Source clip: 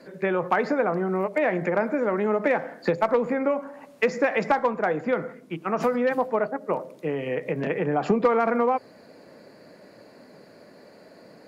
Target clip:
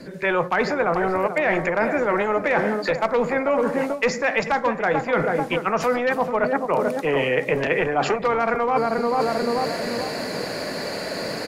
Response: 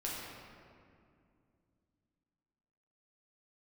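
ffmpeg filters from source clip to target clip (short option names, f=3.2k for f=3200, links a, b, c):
-filter_complex "[0:a]aemphasis=mode=reproduction:type=bsi,asplit=2[a][b];[b]adelay=439,lowpass=f=1k:p=1,volume=-9dB,asplit=2[c][d];[d]adelay=439,lowpass=f=1k:p=1,volume=0.43,asplit=2[e][f];[f]adelay=439,lowpass=f=1k:p=1,volume=0.43,asplit=2[g][h];[h]adelay=439,lowpass=f=1k:p=1,volume=0.43,asplit=2[i][j];[j]adelay=439,lowpass=f=1k:p=1,volume=0.43[k];[a][c][e][g][i][k]amix=inputs=6:normalize=0,acrossover=split=380[l][m];[l]aeval=exprs='0.1*sin(PI/2*1.78*val(0)/0.1)':c=same[n];[m]dynaudnorm=f=100:g=3:m=16dB[o];[n][o]amix=inputs=2:normalize=0,crystalizer=i=8:c=0,areverse,acompressor=threshold=-20dB:ratio=10,areverse,volume=2dB"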